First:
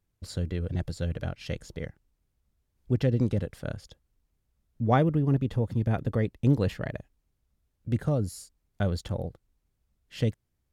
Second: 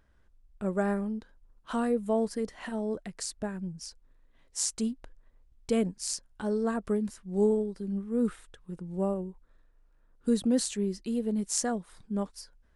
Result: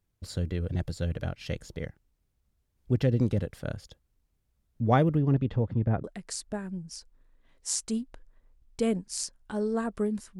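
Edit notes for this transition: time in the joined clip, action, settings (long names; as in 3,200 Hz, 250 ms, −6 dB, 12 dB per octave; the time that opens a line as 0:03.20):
first
0:05.17–0:06.04: low-pass filter 6,600 Hz → 1,200 Hz
0:06.04: continue with second from 0:02.94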